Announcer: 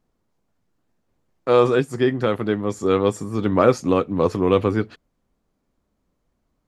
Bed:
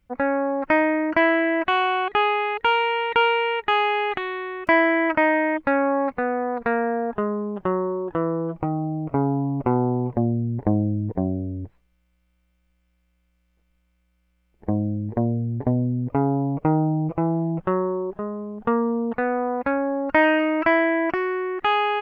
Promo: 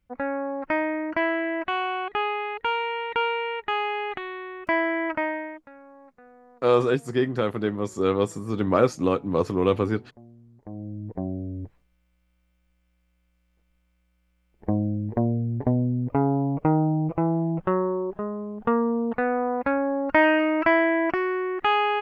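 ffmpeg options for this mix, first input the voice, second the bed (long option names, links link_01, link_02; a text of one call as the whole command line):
ffmpeg -i stem1.wav -i stem2.wav -filter_complex "[0:a]adelay=5150,volume=-4dB[link_01];[1:a]volume=20.5dB,afade=type=out:start_time=5.11:duration=0.58:silence=0.0841395,afade=type=in:start_time=10.59:duration=1.24:silence=0.0473151[link_02];[link_01][link_02]amix=inputs=2:normalize=0" out.wav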